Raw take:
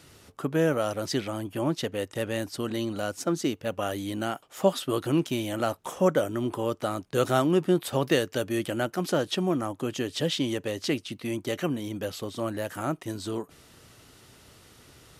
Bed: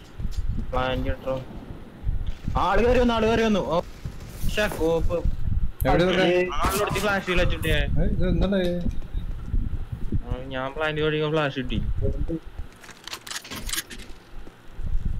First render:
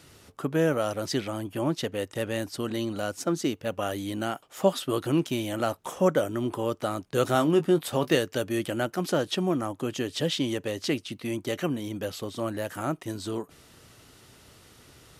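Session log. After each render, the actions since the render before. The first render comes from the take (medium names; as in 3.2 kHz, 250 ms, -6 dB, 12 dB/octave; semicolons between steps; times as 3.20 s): 7.33–8.17 s: doubling 19 ms -10 dB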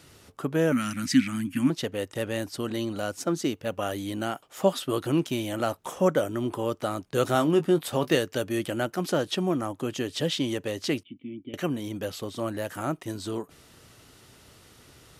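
0.72–1.70 s: FFT filter 150 Hz 0 dB, 260 Hz +15 dB, 410 Hz -28 dB, 680 Hz -18 dB, 1.5 kHz +4 dB, 2.3 kHz +10 dB, 3.3 kHz -1 dB, 8.5 kHz +6 dB, 13 kHz +1 dB; 11.03–11.54 s: cascade formant filter i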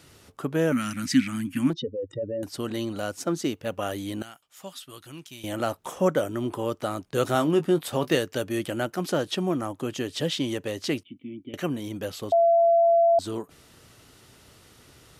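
1.73–2.43 s: spectral contrast enhancement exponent 3.1; 4.22–5.44 s: amplifier tone stack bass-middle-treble 5-5-5; 12.32–13.19 s: bleep 676 Hz -15.5 dBFS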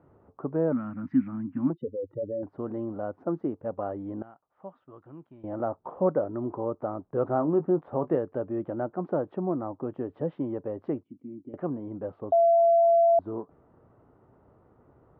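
low-pass 1 kHz 24 dB/octave; tilt EQ +1.5 dB/octave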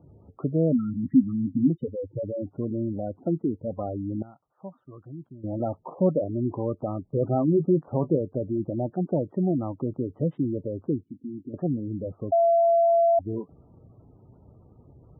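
spectral gate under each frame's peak -15 dB strong; tone controls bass +11 dB, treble +5 dB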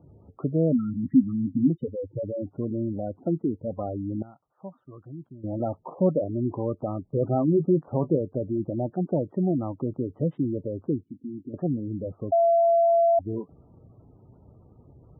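no audible change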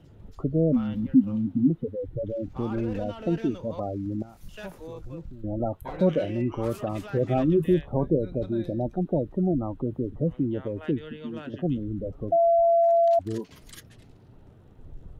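add bed -18.5 dB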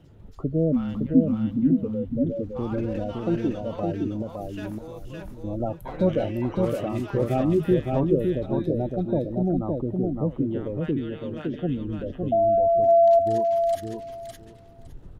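feedback delay 562 ms, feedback 17%, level -3.5 dB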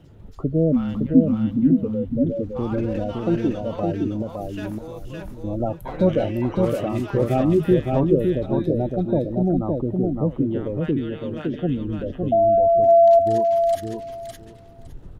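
trim +3.5 dB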